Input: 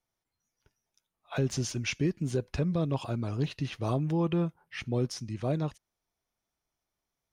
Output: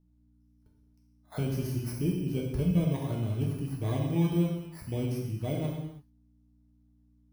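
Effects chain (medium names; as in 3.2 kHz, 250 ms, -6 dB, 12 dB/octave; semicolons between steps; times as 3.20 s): bit-reversed sample order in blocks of 16 samples; mains buzz 60 Hz, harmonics 5, -67 dBFS -1 dB/octave; tilt EQ -2 dB/octave; gated-style reverb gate 350 ms falling, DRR -2.5 dB; trim -7.5 dB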